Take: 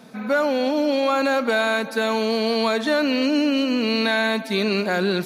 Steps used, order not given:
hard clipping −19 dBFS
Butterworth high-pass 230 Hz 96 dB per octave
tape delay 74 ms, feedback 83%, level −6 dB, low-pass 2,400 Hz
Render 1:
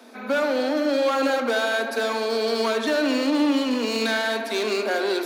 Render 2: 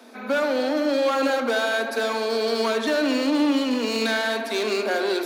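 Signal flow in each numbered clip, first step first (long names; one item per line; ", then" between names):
hard clipping, then tape delay, then Butterworth high-pass
hard clipping, then Butterworth high-pass, then tape delay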